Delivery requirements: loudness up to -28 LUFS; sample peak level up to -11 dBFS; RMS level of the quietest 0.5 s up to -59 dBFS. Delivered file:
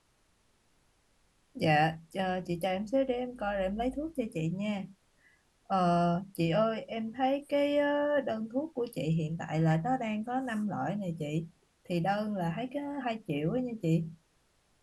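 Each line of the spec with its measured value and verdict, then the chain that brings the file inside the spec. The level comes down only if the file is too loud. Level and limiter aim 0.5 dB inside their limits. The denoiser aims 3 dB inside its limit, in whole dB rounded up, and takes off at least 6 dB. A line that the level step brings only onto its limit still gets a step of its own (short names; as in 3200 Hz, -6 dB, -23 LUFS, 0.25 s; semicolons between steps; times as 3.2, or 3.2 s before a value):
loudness -32.0 LUFS: OK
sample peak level -14.0 dBFS: OK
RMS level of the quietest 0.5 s -71 dBFS: OK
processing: none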